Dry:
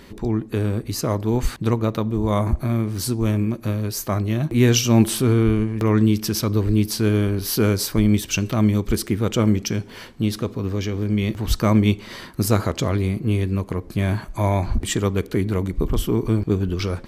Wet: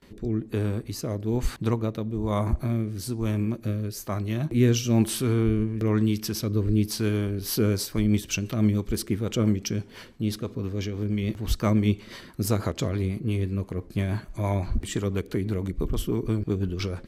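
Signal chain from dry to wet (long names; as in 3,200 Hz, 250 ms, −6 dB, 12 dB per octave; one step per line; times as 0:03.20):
noise gate with hold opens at −34 dBFS
rotating-speaker cabinet horn 1.1 Hz, later 6 Hz, at 0:07.09
level −4 dB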